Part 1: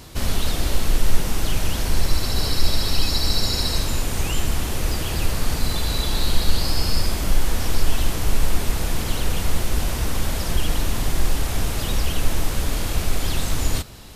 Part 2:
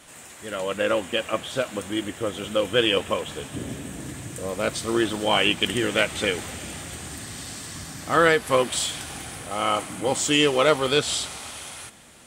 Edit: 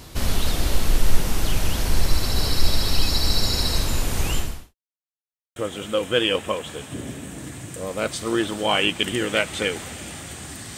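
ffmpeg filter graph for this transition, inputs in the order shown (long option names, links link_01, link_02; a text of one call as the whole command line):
ffmpeg -i cue0.wav -i cue1.wav -filter_complex "[0:a]apad=whole_dur=10.77,atrim=end=10.77,asplit=2[link_01][link_02];[link_01]atrim=end=4.75,asetpts=PTS-STARTPTS,afade=type=out:start_time=4.35:duration=0.4:curve=qua[link_03];[link_02]atrim=start=4.75:end=5.56,asetpts=PTS-STARTPTS,volume=0[link_04];[1:a]atrim=start=2.18:end=7.39,asetpts=PTS-STARTPTS,afade=type=in:duration=0.004:curve=hsin[link_05];[link_03][link_04][link_05]concat=n=3:v=0:a=1" out.wav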